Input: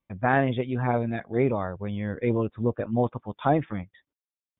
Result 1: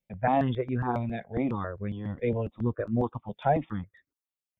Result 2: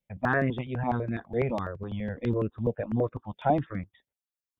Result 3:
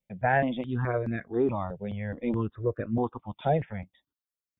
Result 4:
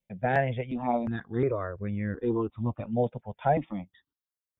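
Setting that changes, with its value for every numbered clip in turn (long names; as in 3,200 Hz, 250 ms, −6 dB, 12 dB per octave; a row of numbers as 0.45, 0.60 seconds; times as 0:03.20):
step-sequenced phaser, speed: 7.3, 12, 4.7, 2.8 Hertz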